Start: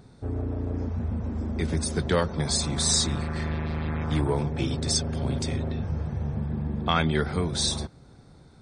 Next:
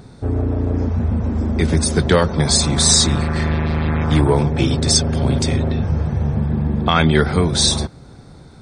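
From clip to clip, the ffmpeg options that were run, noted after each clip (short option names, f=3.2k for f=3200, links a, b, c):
-af "alimiter=level_in=11.5dB:limit=-1dB:release=50:level=0:latency=1,volume=-1dB"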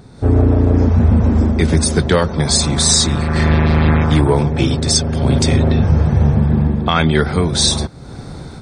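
-af "dynaudnorm=f=130:g=3:m=12dB,volume=-1dB"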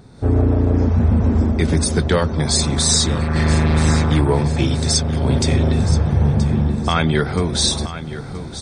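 -af "aecho=1:1:976|1952|2928|3904:0.224|0.0963|0.0414|0.0178,volume=-3.5dB"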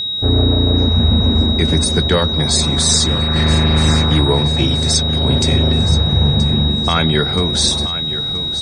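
-af "aeval=exprs='val(0)+0.1*sin(2*PI*3800*n/s)':c=same,volume=1.5dB"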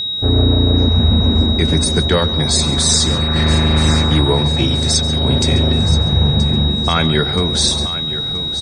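-af "aecho=1:1:138:0.15"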